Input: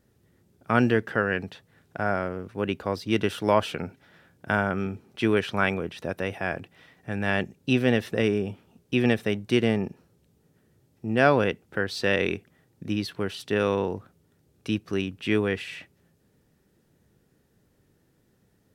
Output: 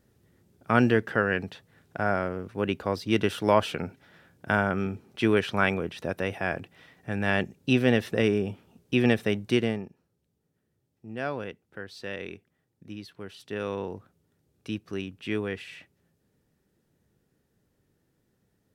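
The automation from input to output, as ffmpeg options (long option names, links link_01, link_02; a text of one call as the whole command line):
ffmpeg -i in.wav -af "volume=6.5dB,afade=type=out:start_time=9.47:duration=0.41:silence=0.237137,afade=type=in:start_time=13.17:duration=0.79:silence=0.473151" out.wav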